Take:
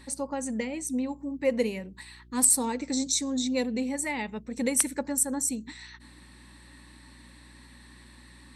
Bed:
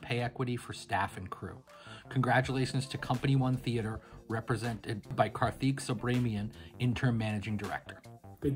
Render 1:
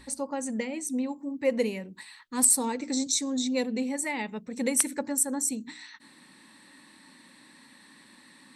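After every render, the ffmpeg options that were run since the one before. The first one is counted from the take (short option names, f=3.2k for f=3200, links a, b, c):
-af "bandreject=f=60:t=h:w=4,bandreject=f=120:t=h:w=4,bandreject=f=180:t=h:w=4,bandreject=f=240:t=h:w=4,bandreject=f=300:t=h:w=4,bandreject=f=360:t=h:w=4"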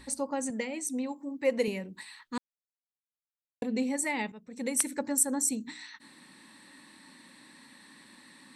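-filter_complex "[0:a]asettb=1/sr,asplit=3[a][b][c];[a]atrim=end=0.504[d];[b]atrim=start=0.5:end=1.68,asetpts=PTS-STARTPTS,afade=t=in:d=0.004:c=qsin,afade=t=out:st=1.176:d=0.004:c=qsin,highpass=f=310:p=1[e];[c]atrim=start=1.676[f];[d][e]acrossfade=d=0.004:c1=hsin:c2=qsin[g];[g][f]acrossfade=d=0.004:c1=qsin:c2=hsin,asplit=4[h][i][j][k];[h]atrim=end=2.38,asetpts=PTS-STARTPTS,afade=t=out:st=2.376:d=0.004:c=hsin[l];[i]atrim=start=2.38:end=3.62,asetpts=PTS-STARTPTS,volume=0[m];[j]atrim=start=3.62:end=4.32,asetpts=PTS-STARTPTS,afade=t=in:d=0.004:c=hsin,afade=t=out:st=0.696:d=0.004:c=hsin:silence=0.211349[n];[k]atrim=start=4.32,asetpts=PTS-STARTPTS,afade=t=in:d=0.83:silence=0.211349[o];[l][m][n][o]concat=n=4:v=0:a=1"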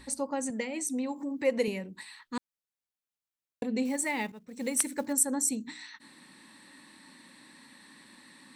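-filter_complex "[0:a]asplit=3[a][b][c];[a]afade=t=out:st=0.74:d=0.02[d];[b]acompressor=mode=upward:threshold=-28dB:ratio=2.5:attack=3.2:release=140:knee=2.83:detection=peak,afade=t=in:st=0.74:d=0.02,afade=t=out:st=1.65:d=0.02[e];[c]afade=t=in:st=1.65:d=0.02[f];[d][e][f]amix=inputs=3:normalize=0,asettb=1/sr,asplit=3[g][h][i];[g]atrim=end=3.854[j];[h]atrim=start=3.85:end=5.13,asetpts=PTS-STARTPTS,afade=t=in:d=0.004:c=qsin,afade=t=out:st=1.276:d=0.004:c=qsin,acrusher=bits=6:mode=log:mix=0:aa=0.000001[k];[i]atrim=start=5.126[l];[j][k]acrossfade=d=0.004:c1=hsin:c2=qsin[m];[m][l]acrossfade=d=0.004:c1=qsin:c2=hsin"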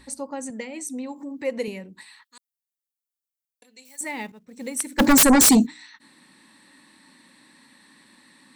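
-filter_complex "[0:a]asettb=1/sr,asplit=3[a][b][c];[a]atrim=end=2.244[d];[b]atrim=start=2.24:end=4.01,asetpts=PTS-STARTPTS,afade=t=in:d=0.004:c=qsin,afade=t=out:st=1.766:d=0.004:c=qsin,aderivative[e];[c]atrim=start=4.006[f];[d][e]acrossfade=d=0.004:c1=hsin:c2=qsin[g];[g][f]acrossfade=d=0.004:c1=qsin:c2=hsin,asplit=3[h][i][j];[h]afade=t=out:st=4.98:d=0.02[k];[i]aeval=exprs='0.299*sin(PI/2*8.91*val(0)/0.299)':c=same,afade=t=in:st=4.98:d=0.02,afade=t=out:st=5.65:d=0.02[l];[j]afade=t=in:st=5.65:d=0.02[m];[k][l][m]amix=inputs=3:normalize=0"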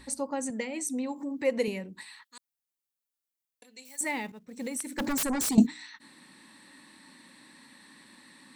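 -filter_complex "[0:a]asettb=1/sr,asplit=3[a][b][c];[a]atrim=end=4.174[d];[b]atrim=start=4.17:end=5.58,asetpts=PTS-STARTPTS,afade=t=in:d=0.004:c=qsin,afade=t=out:st=1.406:d=0.004:c=qsin,acompressor=threshold=-31dB:ratio=4:attack=3.2:release=140:knee=1:detection=peak[e];[c]atrim=start=5.576[f];[d][e]acrossfade=d=0.004:c1=hsin:c2=qsin[g];[g][f]acrossfade=d=0.004:c1=qsin:c2=hsin"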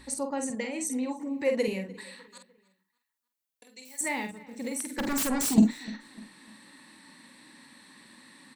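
-filter_complex "[0:a]asplit=2[a][b];[b]adelay=47,volume=-6dB[c];[a][c]amix=inputs=2:normalize=0,asplit=2[d][e];[e]adelay=300,lowpass=f=4.5k:p=1,volume=-20.5dB,asplit=2[f][g];[g]adelay=300,lowpass=f=4.5k:p=1,volume=0.41,asplit=2[h][i];[i]adelay=300,lowpass=f=4.5k:p=1,volume=0.41[j];[d][f][h][j]amix=inputs=4:normalize=0"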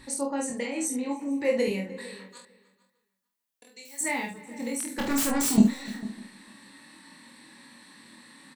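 -filter_complex "[0:a]asplit=2[a][b];[b]adelay=25,volume=-2.5dB[c];[a][c]amix=inputs=2:normalize=0,asplit=2[d][e];[e]adelay=449,volume=-18dB,highshelf=f=4k:g=-10.1[f];[d][f]amix=inputs=2:normalize=0"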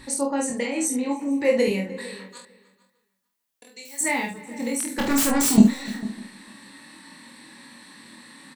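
-af "volume=5dB"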